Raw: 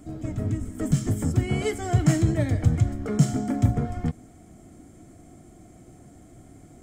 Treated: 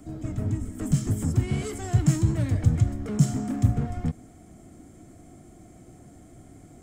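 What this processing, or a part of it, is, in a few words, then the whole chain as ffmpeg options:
one-band saturation: -filter_complex "[0:a]acrossover=split=260|4600[link_01][link_02][link_03];[link_02]asoftclip=type=tanh:threshold=-35.5dB[link_04];[link_01][link_04][link_03]amix=inputs=3:normalize=0"

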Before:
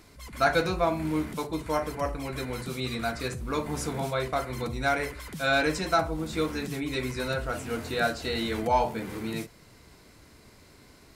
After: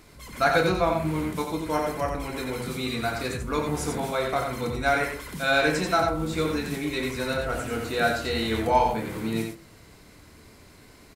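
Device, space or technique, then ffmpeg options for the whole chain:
slapback doubling: -filter_complex "[0:a]asplit=3[link_01][link_02][link_03];[link_02]adelay=27,volume=-9dB[link_04];[link_03]adelay=89,volume=-4.5dB[link_05];[link_01][link_04][link_05]amix=inputs=3:normalize=0,equalizer=frequency=5100:width_type=o:width=0.77:gain=-2.5,bandreject=frequency=66.8:width_type=h:width=4,bandreject=frequency=133.6:width_type=h:width=4,bandreject=frequency=200.4:width_type=h:width=4,bandreject=frequency=267.2:width_type=h:width=4,bandreject=frequency=334:width_type=h:width=4,bandreject=frequency=400.8:width_type=h:width=4,bandreject=frequency=467.6:width_type=h:width=4,bandreject=frequency=534.4:width_type=h:width=4,bandreject=frequency=601.2:width_type=h:width=4,bandreject=frequency=668:width_type=h:width=4,bandreject=frequency=734.8:width_type=h:width=4,bandreject=frequency=801.6:width_type=h:width=4,bandreject=frequency=868.4:width_type=h:width=4,bandreject=frequency=935.2:width_type=h:width=4,bandreject=frequency=1002:width_type=h:width=4,bandreject=frequency=1068.8:width_type=h:width=4,bandreject=frequency=1135.6:width_type=h:width=4,bandreject=frequency=1202.4:width_type=h:width=4,bandreject=frequency=1269.2:width_type=h:width=4,bandreject=frequency=1336:width_type=h:width=4,bandreject=frequency=1402.8:width_type=h:width=4,bandreject=frequency=1469.6:width_type=h:width=4,bandreject=frequency=1536.4:width_type=h:width=4,bandreject=frequency=1603.2:width_type=h:width=4,bandreject=frequency=1670:width_type=h:width=4,bandreject=frequency=1736.8:width_type=h:width=4,bandreject=frequency=1803.6:width_type=h:width=4,bandreject=frequency=1870.4:width_type=h:width=4,bandreject=frequency=1937.2:width_type=h:width=4,bandreject=frequency=2004:width_type=h:width=4,volume=2dB"

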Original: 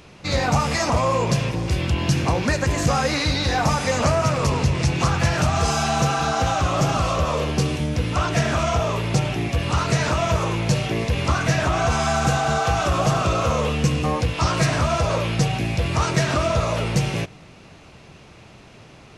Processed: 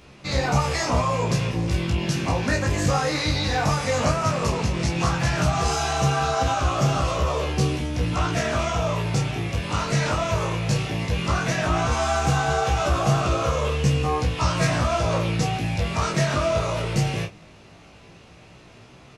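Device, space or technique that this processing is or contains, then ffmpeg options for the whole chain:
double-tracked vocal: -filter_complex "[0:a]asplit=2[link_01][link_02];[link_02]adelay=29,volume=-7dB[link_03];[link_01][link_03]amix=inputs=2:normalize=0,flanger=delay=15:depth=4.8:speed=0.15"

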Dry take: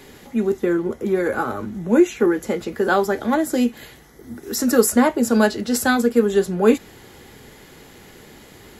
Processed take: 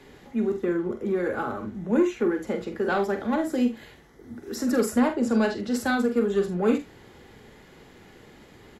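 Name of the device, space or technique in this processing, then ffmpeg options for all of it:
one-band saturation: -filter_complex "[0:a]aemphasis=mode=reproduction:type=50kf,acrossover=split=280|2300[link_01][link_02][link_03];[link_02]asoftclip=type=tanh:threshold=-14dB[link_04];[link_01][link_04][link_03]amix=inputs=3:normalize=0,asettb=1/sr,asplit=3[link_05][link_06][link_07];[link_05]atrim=end=5.084[link_08];[link_06]atrim=start=5.08:end=5.59,asetpts=PTS-STARTPTS,afade=type=in:duration=0.004:curve=qsin,afade=type=out:start_time=0.506:duration=0.004:curve=qsin,lowpass=9300[link_09];[link_07]atrim=start=5.586[link_10];[link_08][link_09]acrossfade=duration=0.004:curve1=hsin:curve2=qsin[link_11];[link_11][link_10]acrossfade=duration=0.004:curve1=qsin:curve2=hsin,aecho=1:1:45|76:0.398|0.168,volume=-5.5dB"

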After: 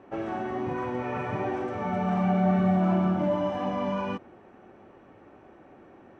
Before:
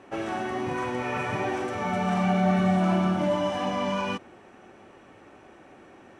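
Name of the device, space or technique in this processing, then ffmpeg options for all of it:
through cloth: -af "lowpass=7600,highshelf=frequency=2200:gain=-14.5"

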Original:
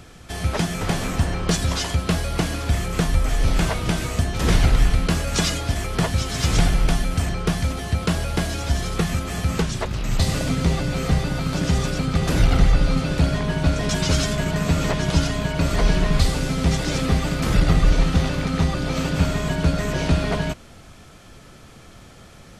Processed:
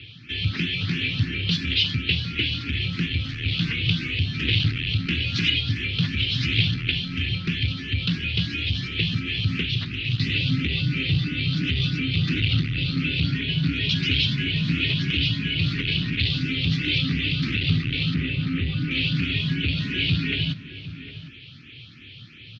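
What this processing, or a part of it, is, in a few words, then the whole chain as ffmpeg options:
barber-pole phaser into a guitar amplifier: -filter_complex "[0:a]asplit=2[link_01][link_02];[link_02]afreqshift=2.9[link_03];[link_01][link_03]amix=inputs=2:normalize=1,asoftclip=type=tanh:threshold=-18.5dB,highpass=77,highpass=98,equalizer=frequency=110:width_type=q:width=4:gain=7,equalizer=frequency=200:width_type=q:width=4:gain=-9,equalizer=frequency=940:width_type=q:width=4:gain=-6,lowpass=frequency=3500:width=0.5412,lowpass=frequency=3500:width=1.3066,asettb=1/sr,asplit=3[link_04][link_05][link_06];[link_04]atrim=end=18.144[link_07];[link_05]atrim=start=18.14:end=18.91,asetpts=PTS-STARTPTS,afade=type=in:duration=0.004:curve=qsin,afade=type=out:start_time=0.766:duration=0.004:curve=qsin,acrossover=split=2500[link_08][link_09];[link_09]acompressor=threshold=-57dB:ratio=4:attack=1:release=60[link_10];[link_08][link_10]amix=inputs=2:normalize=0[link_11];[link_06]atrim=start=18.906[link_12];[link_07][link_11]acrossfade=duration=0.004:curve1=hsin:curve2=qsin[link_13];[link_13][link_12]acrossfade=duration=0.004:curve1=qsin:curve2=hsin,firequalizer=gain_entry='entry(250,0);entry(640,-30);entry(1400,-12);entry(2600,10);entry(4300,9);entry(8300,-8)':delay=0.05:min_phase=1,asplit=2[link_14][link_15];[link_15]adelay=758,volume=-13dB,highshelf=frequency=4000:gain=-17.1[link_16];[link_14][link_16]amix=inputs=2:normalize=0,volume=5.5dB"

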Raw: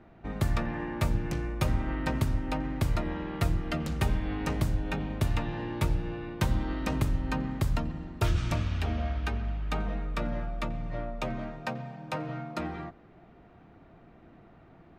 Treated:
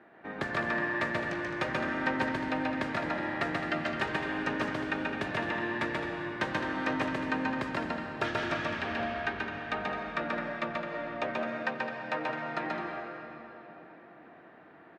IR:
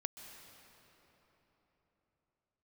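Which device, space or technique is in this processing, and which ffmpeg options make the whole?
station announcement: -filter_complex "[0:a]highpass=310,lowpass=3900,equalizer=frequency=1700:width_type=o:width=0.3:gain=10,aecho=1:1:134.1|212.8:0.794|0.316[link_01];[1:a]atrim=start_sample=2205[link_02];[link_01][link_02]afir=irnorm=-1:irlink=0,volume=3dB"

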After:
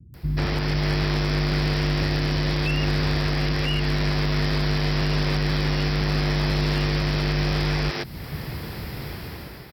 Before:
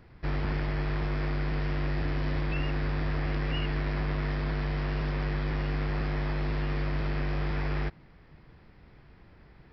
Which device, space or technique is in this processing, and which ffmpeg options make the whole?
FM broadcast chain: -filter_complex "[0:a]highpass=71,dynaudnorm=framelen=280:gausssize=5:maxgain=14dB,acrossover=split=250|3500[link_01][link_02][link_03];[link_01]acompressor=threshold=-30dB:ratio=4[link_04];[link_02]acompressor=threshold=-33dB:ratio=4[link_05];[link_03]acompressor=threshold=-42dB:ratio=4[link_06];[link_04][link_05][link_06]amix=inputs=3:normalize=0,aemphasis=mode=production:type=75fm,alimiter=level_in=0.5dB:limit=-24dB:level=0:latency=1:release=381,volume=-0.5dB,asoftclip=type=hard:threshold=-26dB,lowpass=frequency=15000:width=0.5412,lowpass=frequency=15000:width=1.3066,aemphasis=mode=production:type=75fm,tiltshelf=frequency=770:gain=4.5,acrossover=split=240[link_07][link_08];[link_08]adelay=140[link_09];[link_07][link_09]amix=inputs=2:normalize=0,acrossover=split=4200[link_10][link_11];[link_11]acompressor=threshold=-44dB:ratio=4:attack=1:release=60[link_12];[link_10][link_12]amix=inputs=2:normalize=0,volume=8.5dB"

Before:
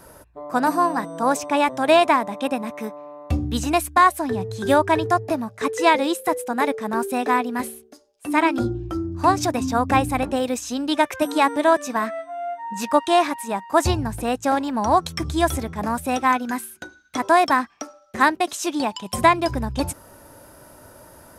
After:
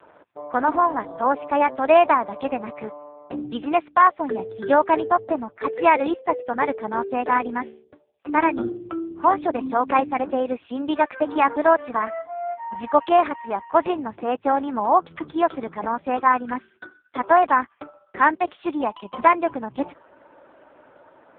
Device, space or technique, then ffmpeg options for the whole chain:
telephone: -af "highpass=280,lowpass=3300,volume=1dB" -ar 8000 -c:a libopencore_amrnb -b:a 4750

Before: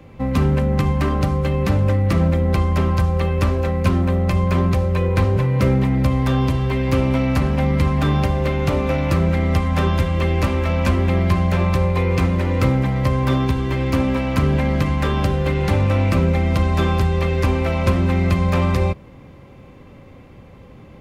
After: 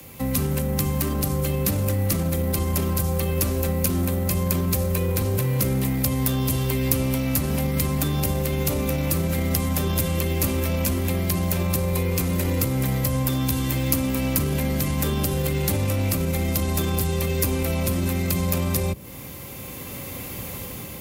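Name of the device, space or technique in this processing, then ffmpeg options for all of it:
FM broadcast chain: -filter_complex "[0:a]asettb=1/sr,asplit=3[link_01][link_02][link_03];[link_01]atrim=end=13.054[link_04];[link_02]atrim=start=13.05:end=14.05,asetpts=PTS-STARTPTS,afade=type=in:duration=0.004:curve=qsin,afade=type=out:start_time=0.996:duration=0.004:curve=qsin,bandreject=frequency=390:width=12[link_05];[link_03]atrim=start=14.046[link_06];[link_04][link_05]acrossfade=duration=0.004:curve1=hsin:curve2=qsin[link_07];[link_07][link_06]acrossfade=duration=0.004:curve1=qsin:curve2=hsin,highpass=48,dynaudnorm=framelen=500:gausssize=5:maxgain=14dB,acrossover=split=93|260|550[link_08][link_09][link_10][link_11];[link_08]acompressor=threshold=-27dB:ratio=4[link_12];[link_09]acompressor=threshold=-21dB:ratio=4[link_13];[link_10]acompressor=threshold=-26dB:ratio=4[link_14];[link_11]acompressor=threshold=-36dB:ratio=4[link_15];[link_12][link_13][link_14][link_15]amix=inputs=4:normalize=0,aemphasis=mode=production:type=75fm,alimiter=limit=-14.5dB:level=0:latency=1:release=16,asoftclip=type=hard:threshold=-16dB,lowpass=frequency=15000:width=0.5412,lowpass=frequency=15000:width=1.3066,aemphasis=mode=production:type=75fm,volume=-1dB"

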